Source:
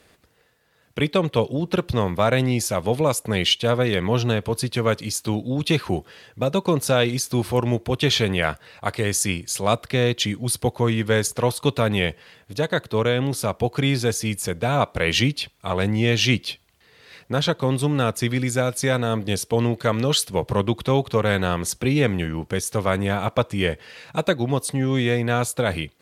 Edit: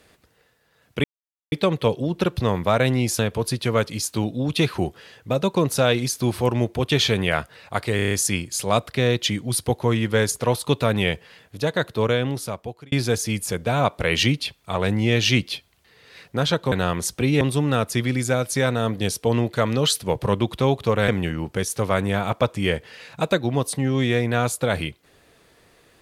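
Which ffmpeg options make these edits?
ffmpeg -i in.wav -filter_complex "[0:a]asplit=12[link_01][link_02][link_03][link_04][link_05][link_06][link_07][link_08][link_09][link_10][link_11][link_12];[link_01]atrim=end=1.04,asetpts=PTS-STARTPTS,afade=type=out:start_time=1.036:duration=0.004:curve=hsin,apad=pad_dur=0.48[link_13];[link_02]atrim=start=1.04:end=2.712,asetpts=PTS-STARTPTS,afade=type=in:duration=0.004:curve=hsin[link_14];[link_03]atrim=start=4.298:end=9.102[link_15];[link_04]atrim=start=9.068:end=9.102[link_16];[link_05]atrim=start=9.068:end=9.102[link_17];[link_06]atrim=start=9.068:end=9.102[link_18];[link_07]atrim=start=9.068:end=9.102[link_19];[link_08]atrim=start=9.068:end=13.88,asetpts=PTS-STARTPTS,afade=type=out:start_time=4.002:duration=0.81[link_20];[link_09]atrim=start=13.88:end=17.682,asetpts=PTS-STARTPTS,afade=type=in:duration=0.004:curve=hsin[link_21];[link_10]atrim=start=21.348:end=22.042[link_22];[link_11]atrim=start=17.678:end=21.352[link_23];[link_12]atrim=start=22.038[link_24];[link_13][link_14]concat=n=2:v=0:a=1[link_25];[link_25][link_15]acrossfade=duration=0.004:curve1=hsin:curve2=hsin[link_26];[link_26][link_16]acrossfade=duration=0.004:curve1=hsin:curve2=hsin[link_27];[link_27][link_17]acrossfade=duration=0.004:curve1=hsin:curve2=hsin[link_28];[link_28][link_18]acrossfade=duration=0.004:curve1=hsin:curve2=hsin[link_29];[link_29][link_19]acrossfade=duration=0.004:curve1=hsin:curve2=hsin[link_30];[link_20][link_21]concat=n=2:v=0:a=1[link_31];[link_30][link_31]acrossfade=duration=0.004:curve1=hsin:curve2=hsin[link_32];[link_32][link_22]acrossfade=duration=0.004:curve1=hsin:curve2=hsin[link_33];[link_33][link_23]acrossfade=duration=0.004:curve1=hsin:curve2=hsin[link_34];[link_34][link_24]acrossfade=duration=0.004:curve1=hsin:curve2=hsin" out.wav

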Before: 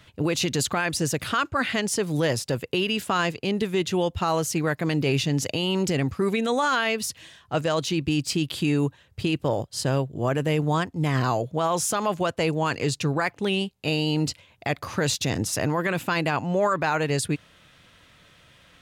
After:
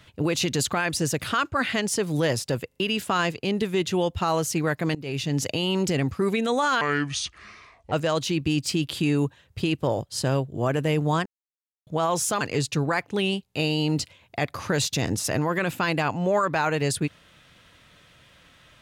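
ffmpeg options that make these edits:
ffmpeg -i in.wav -filter_complex "[0:a]asplit=10[link_01][link_02][link_03][link_04][link_05][link_06][link_07][link_08][link_09][link_10];[link_01]atrim=end=2.722[link_11];[link_02]atrim=start=2.678:end=2.722[link_12];[link_03]atrim=start=2.678:end=2.722[link_13];[link_04]atrim=start=2.798:end=4.95,asetpts=PTS-STARTPTS,afade=type=out:start_time=2.148:duration=0.004:curve=hsin:silence=0.0944061[link_14];[link_05]atrim=start=4.95:end=6.814,asetpts=PTS-STARTPTS,afade=type=in:duration=0.45:silence=0.0944061[link_15];[link_06]atrim=start=6.81:end=7.53,asetpts=PTS-STARTPTS,asetrate=28665,aresample=44100,atrim=end_sample=48849,asetpts=PTS-STARTPTS[link_16];[link_07]atrim=start=7.526:end=10.87,asetpts=PTS-STARTPTS,afade=type=out:start_time=3.34:duration=0.004:curve=hsin[link_17];[link_08]atrim=start=10.87:end=11.48,asetpts=PTS-STARTPTS,volume=0[link_18];[link_09]atrim=start=11.48:end=12.022,asetpts=PTS-STARTPTS,afade=type=in:duration=0.004:curve=hsin[link_19];[link_10]atrim=start=12.688[link_20];[link_11][link_12]acrossfade=duration=0.004:curve1=hsin:curve2=hsin[link_21];[link_21][link_13]acrossfade=duration=0.004:curve1=hsin:curve2=hsin[link_22];[link_14][link_15]concat=n=2:v=0:a=1[link_23];[link_22][link_23]acrossfade=duration=0.004:curve1=hsin:curve2=hsin[link_24];[link_24][link_16]acrossfade=duration=0.004:curve1=hsin:curve2=hsin[link_25];[link_17][link_18][link_19]concat=n=3:v=0:a=1[link_26];[link_25][link_26]acrossfade=duration=0.004:curve1=hsin:curve2=hsin[link_27];[link_27][link_20]acrossfade=duration=0.004:curve1=hsin:curve2=hsin" out.wav

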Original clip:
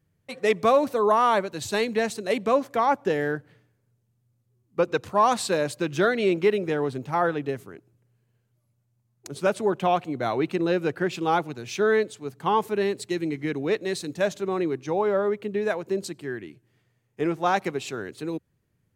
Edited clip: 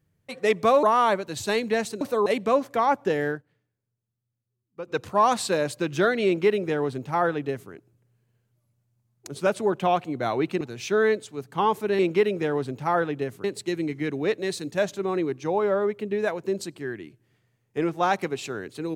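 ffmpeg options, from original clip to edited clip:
ffmpeg -i in.wav -filter_complex "[0:a]asplit=9[link_01][link_02][link_03][link_04][link_05][link_06][link_07][link_08][link_09];[link_01]atrim=end=0.832[link_10];[link_02]atrim=start=1.078:end=2.262[link_11];[link_03]atrim=start=0.828:end=1.082[link_12];[link_04]atrim=start=2.258:end=3.43,asetpts=PTS-STARTPTS,afade=type=out:start_time=1.032:duration=0.14:silence=0.211349[link_13];[link_05]atrim=start=3.43:end=4.85,asetpts=PTS-STARTPTS,volume=-13.5dB[link_14];[link_06]atrim=start=4.85:end=10.612,asetpts=PTS-STARTPTS,afade=type=in:duration=0.14:silence=0.211349[link_15];[link_07]atrim=start=11.488:end=12.872[link_16];[link_08]atrim=start=6.258:end=7.712[link_17];[link_09]atrim=start=12.868[link_18];[link_10][link_11]acrossfade=duration=0.004:curve1=hsin:curve2=hsin[link_19];[link_19][link_12]acrossfade=duration=0.004:curve1=hsin:curve2=hsin[link_20];[link_13][link_14][link_15]concat=n=3:v=0:a=1[link_21];[link_20][link_21]acrossfade=duration=0.004:curve1=hsin:curve2=hsin[link_22];[link_22][link_16]acrossfade=duration=0.004:curve1=hsin:curve2=hsin[link_23];[link_23][link_17]acrossfade=duration=0.004:curve1=hsin:curve2=hsin[link_24];[link_24][link_18]acrossfade=duration=0.004:curve1=hsin:curve2=hsin" out.wav

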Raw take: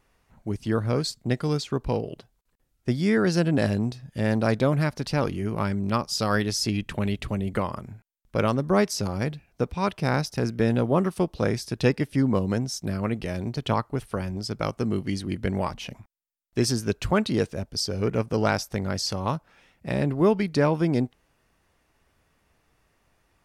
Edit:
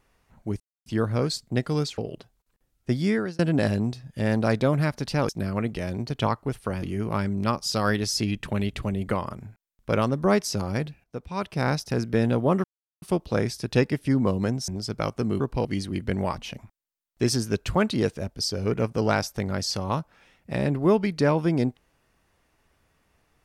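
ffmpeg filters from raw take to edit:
ffmpeg -i in.wav -filter_complex "[0:a]asplit=11[link_01][link_02][link_03][link_04][link_05][link_06][link_07][link_08][link_09][link_10][link_11];[link_01]atrim=end=0.6,asetpts=PTS-STARTPTS,afade=type=out:start_time=0.596:duration=0.004:curve=hsin,apad=pad_dur=0.26[link_12];[link_02]atrim=start=0.6:end=1.722,asetpts=PTS-STARTPTS,afade=type=in:duration=0.004:curve=hsin[link_13];[link_03]atrim=start=1.968:end=3.38,asetpts=PTS-STARTPTS,afade=type=out:start_time=1.082:duration=0.33[link_14];[link_04]atrim=start=3.38:end=5.282,asetpts=PTS-STARTPTS,afade=type=in:duration=0.004:curve=hsin[link_15];[link_05]atrim=start=12.758:end=14.292[link_16];[link_06]atrim=start=5.278:end=9.5,asetpts=PTS-STARTPTS,afade=type=out:start_time=4.218:duration=0.004:curve=hsin:silence=0.199526[link_17];[link_07]atrim=start=9.5:end=11.1,asetpts=PTS-STARTPTS,afade=type=in:duration=0.67:silence=0.199526,afade=type=out:start_time=1.596:duration=0.004:curve=hsin,apad=pad_dur=0.38[link_18];[link_08]atrim=start=11.1:end=12.762,asetpts=PTS-STARTPTS,afade=type=in:duration=0.004:curve=hsin[link_19];[link_09]atrim=start=14.288:end=15.012[link_20];[link_10]atrim=start=1.718:end=1.972[link_21];[link_11]atrim=start=15.008[link_22];[link_12][link_13]concat=n=2:v=0:a=1[link_23];[link_14][link_15]concat=n=2:v=0:a=1[link_24];[link_23][link_24]acrossfade=duration=0.004:curve1=hsin:curve2=hsin[link_25];[link_25][link_16]acrossfade=duration=0.004:curve1=hsin:curve2=hsin[link_26];[link_17][link_18][link_19]concat=n=3:v=0:a=1[link_27];[link_26][link_27]acrossfade=duration=0.004:curve1=hsin:curve2=hsin[link_28];[link_28][link_20]acrossfade=duration=0.004:curve1=hsin:curve2=hsin[link_29];[link_29][link_21]acrossfade=duration=0.004:curve1=hsin:curve2=hsin[link_30];[link_30][link_22]acrossfade=duration=0.004:curve1=hsin:curve2=hsin" out.wav

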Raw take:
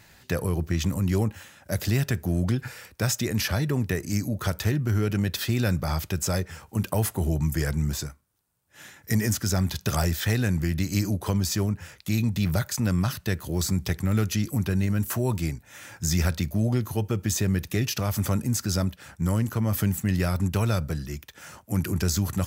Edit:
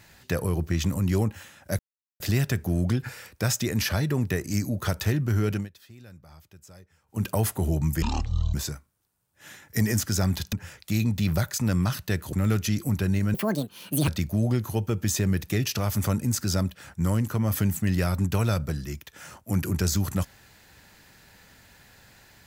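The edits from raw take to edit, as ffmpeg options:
ffmpeg -i in.wav -filter_complex "[0:a]asplit=10[link_01][link_02][link_03][link_04][link_05][link_06][link_07][link_08][link_09][link_10];[link_01]atrim=end=1.79,asetpts=PTS-STARTPTS,afade=type=out:start_time=1.786:duration=0.004:curve=hsin,apad=pad_dur=0.41[link_11];[link_02]atrim=start=1.79:end=5.28,asetpts=PTS-STARTPTS,afade=type=in:duration=0.004:curve=hsin,afade=type=out:start_time=3.32:duration=0.17:silence=0.0668344[link_12];[link_03]atrim=start=5.28:end=6.65,asetpts=PTS-STARTPTS,volume=-23.5dB[link_13];[link_04]atrim=start=6.65:end=7.614,asetpts=PTS-STARTPTS,afade=type=in:duration=0.17:silence=0.0668344[link_14];[link_05]atrim=start=7.61:end=7.88,asetpts=PTS-STARTPTS,asetrate=22932,aresample=44100,atrim=end_sample=22898,asetpts=PTS-STARTPTS[link_15];[link_06]atrim=start=7.876:end=9.872[link_16];[link_07]atrim=start=11.708:end=13.512[link_17];[link_08]atrim=start=13.998:end=15.014[link_18];[link_09]atrim=start=15.01:end=16.29,asetpts=PTS-STARTPTS,asetrate=76734,aresample=44100,atrim=end_sample=32441,asetpts=PTS-STARTPTS[link_19];[link_10]atrim=start=16.286[link_20];[link_11][link_12][link_13][link_14]concat=n=4:v=0:a=1[link_21];[link_21][link_15]acrossfade=duration=0.004:curve1=hsin:curve2=hsin[link_22];[link_22][link_16]acrossfade=duration=0.004:curve1=hsin:curve2=hsin[link_23];[link_23][link_17]acrossfade=duration=0.004:curve1=hsin:curve2=hsin[link_24];[link_24][link_18]acrossfade=duration=0.004:curve1=hsin:curve2=hsin[link_25];[link_25][link_19]acrossfade=duration=0.004:curve1=hsin:curve2=hsin[link_26];[link_26][link_20]acrossfade=duration=0.004:curve1=hsin:curve2=hsin" out.wav

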